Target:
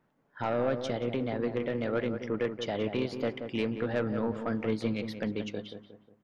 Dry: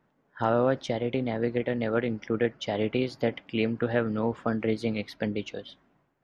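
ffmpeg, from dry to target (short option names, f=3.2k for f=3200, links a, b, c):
-filter_complex "[0:a]asoftclip=type=tanh:threshold=-18.5dB,asplit=2[a][b];[b]adelay=180,lowpass=f=1.4k:p=1,volume=-7.5dB,asplit=2[c][d];[d]adelay=180,lowpass=f=1.4k:p=1,volume=0.42,asplit=2[e][f];[f]adelay=180,lowpass=f=1.4k:p=1,volume=0.42,asplit=2[g][h];[h]adelay=180,lowpass=f=1.4k:p=1,volume=0.42,asplit=2[i][j];[j]adelay=180,lowpass=f=1.4k:p=1,volume=0.42[k];[c][e][g][i][k]amix=inputs=5:normalize=0[l];[a][l]amix=inputs=2:normalize=0,volume=-2.5dB"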